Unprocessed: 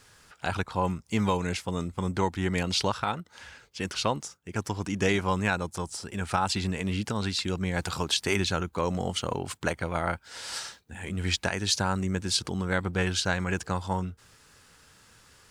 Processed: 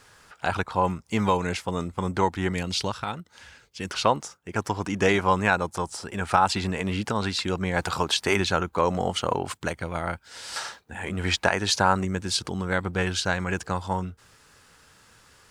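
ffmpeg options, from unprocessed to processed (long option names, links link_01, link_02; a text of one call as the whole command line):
ffmpeg -i in.wav -af "asetnsamples=nb_out_samples=441:pad=0,asendcmd='2.52 equalizer g -2.5;3.9 equalizer g 7.5;9.54 equalizer g -1;10.56 equalizer g 10;12.05 equalizer g 3',equalizer=frequency=900:width_type=o:width=2.7:gain=5.5" out.wav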